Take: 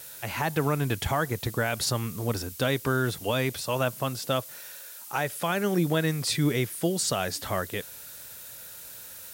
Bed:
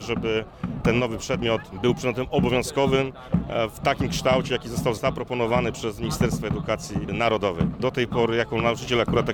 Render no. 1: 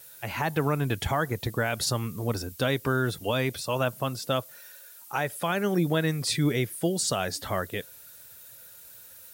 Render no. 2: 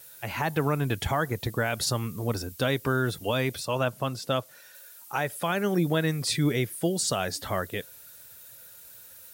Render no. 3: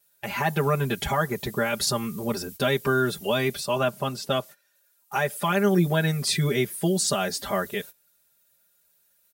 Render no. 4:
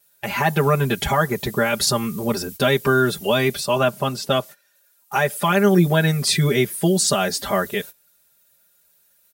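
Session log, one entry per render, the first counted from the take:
noise reduction 8 dB, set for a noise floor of -44 dBFS
3.65–4.75 s: treble shelf 11 kHz -9 dB
gate -41 dBFS, range -20 dB; comb 5 ms, depth 100%
trim +5.5 dB

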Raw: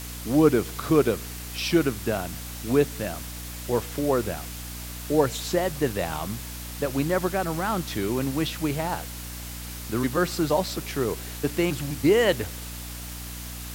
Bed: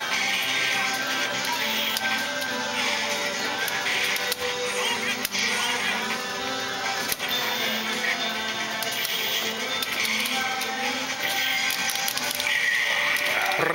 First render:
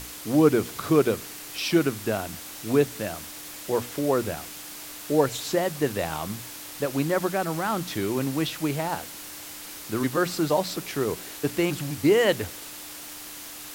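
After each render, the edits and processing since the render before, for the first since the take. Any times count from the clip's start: hum notches 60/120/180/240 Hz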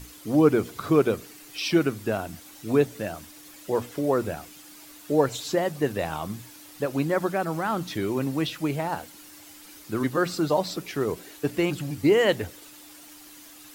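noise reduction 10 dB, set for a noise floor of -40 dBFS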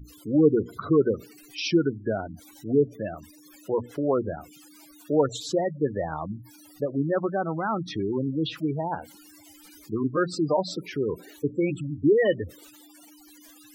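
spectral gate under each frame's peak -15 dB strong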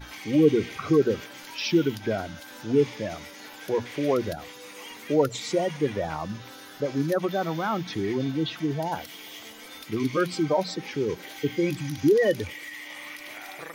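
add bed -17 dB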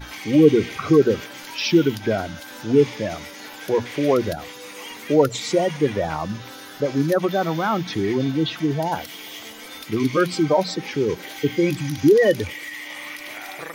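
trim +5.5 dB

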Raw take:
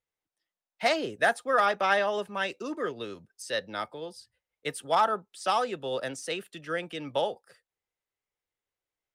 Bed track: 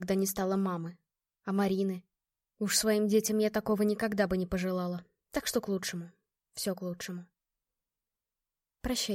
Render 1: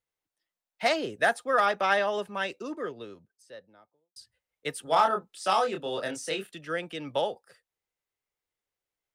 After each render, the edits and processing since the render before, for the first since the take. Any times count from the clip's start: 2.23–4.16 s: studio fade out; 4.84–6.52 s: doubling 26 ms -4 dB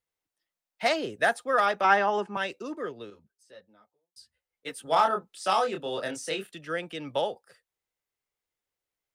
1.84–2.37 s: cabinet simulation 180–7700 Hz, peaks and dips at 200 Hz +6 dB, 350 Hz +9 dB, 560 Hz -5 dB, 860 Hz +10 dB, 1.4 kHz +5 dB, 3.8 kHz -9 dB; 3.10–4.84 s: three-phase chorus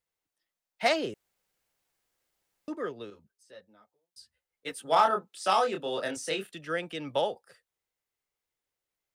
1.14–2.68 s: room tone; 4.72–6.17 s: high-pass 130 Hz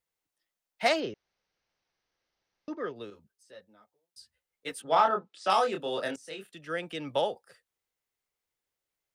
1.00–2.96 s: Chebyshev low-pass 6.1 kHz, order 6; 4.82–5.50 s: distance through air 110 m; 6.16–6.93 s: fade in, from -17.5 dB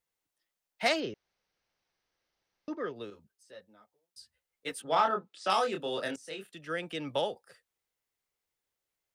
dynamic bell 760 Hz, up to -4 dB, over -35 dBFS, Q 0.82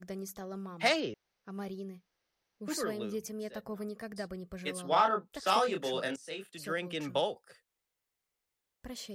add bed track -11.5 dB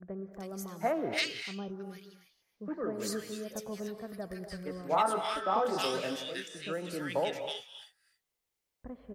bands offset in time lows, highs 320 ms, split 1.5 kHz; gated-style reverb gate 300 ms rising, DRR 8.5 dB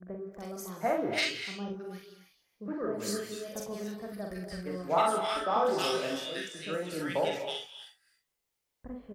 early reflections 44 ms -3.5 dB, 64 ms -9.5 dB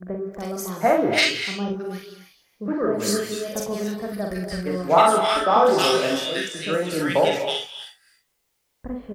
trim +11 dB

